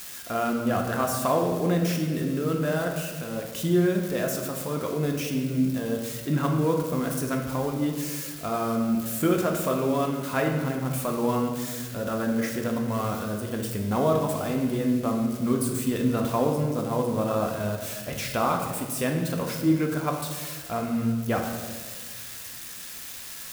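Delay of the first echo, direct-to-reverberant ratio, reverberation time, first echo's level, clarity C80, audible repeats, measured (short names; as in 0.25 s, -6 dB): none, 1.5 dB, 1.6 s, none, 6.5 dB, none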